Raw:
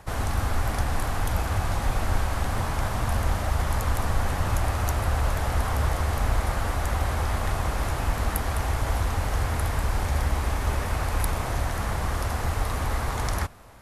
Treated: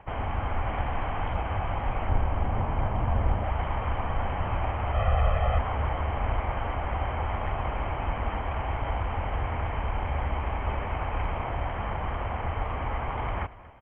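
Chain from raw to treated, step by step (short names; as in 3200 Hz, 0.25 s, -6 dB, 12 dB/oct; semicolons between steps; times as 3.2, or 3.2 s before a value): rippled Chebyshev low-pass 3200 Hz, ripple 6 dB; 2.09–3.44 tilt shelf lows +4.5 dB, about 790 Hz; 4.94–5.59 comb 1.6 ms, depth 92%; echo 0.236 s -18 dB; gain +1.5 dB; Opus 48 kbps 48000 Hz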